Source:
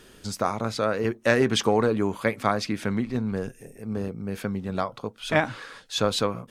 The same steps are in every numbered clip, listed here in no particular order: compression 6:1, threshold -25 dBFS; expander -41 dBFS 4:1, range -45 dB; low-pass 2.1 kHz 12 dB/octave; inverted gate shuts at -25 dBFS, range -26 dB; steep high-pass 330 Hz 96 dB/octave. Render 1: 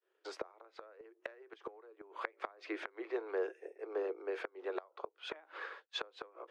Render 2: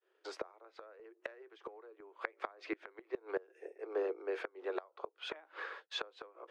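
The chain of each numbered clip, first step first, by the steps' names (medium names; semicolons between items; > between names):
compression > low-pass > expander > steep high-pass > inverted gate; expander > steep high-pass > compression > low-pass > inverted gate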